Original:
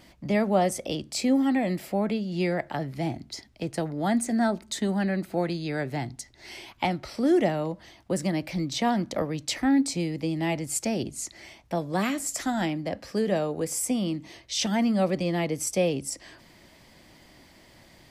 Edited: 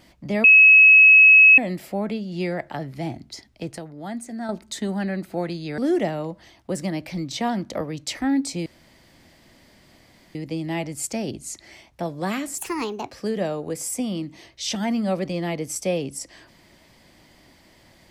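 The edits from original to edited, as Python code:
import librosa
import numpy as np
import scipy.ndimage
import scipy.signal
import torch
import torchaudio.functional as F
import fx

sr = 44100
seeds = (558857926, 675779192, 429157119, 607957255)

y = fx.edit(x, sr, fx.bleep(start_s=0.44, length_s=1.14, hz=2570.0, db=-7.5),
    fx.clip_gain(start_s=3.78, length_s=0.71, db=-7.5),
    fx.cut(start_s=5.78, length_s=1.41),
    fx.insert_room_tone(at_s=10.07, length_s=1.69),
    fx.speed_span(start_s=12.3, length_s=0.72, speed=1.36), tone=tone)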